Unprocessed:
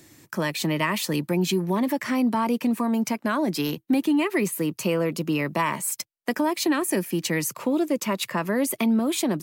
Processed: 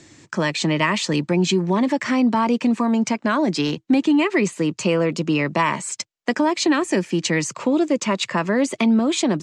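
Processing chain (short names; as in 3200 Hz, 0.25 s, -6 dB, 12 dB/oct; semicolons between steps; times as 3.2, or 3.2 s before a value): Chebyshev low-pass 7500 Hz, order 4; gain +5.5 dB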